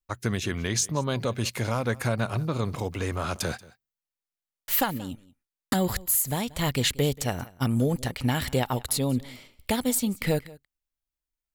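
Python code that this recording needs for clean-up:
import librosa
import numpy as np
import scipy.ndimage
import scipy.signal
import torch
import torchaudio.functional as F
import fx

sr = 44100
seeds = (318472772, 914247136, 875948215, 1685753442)

y = fx.fix_echo_inverse(x, sr, delay_ms=183, level_db=-21.5)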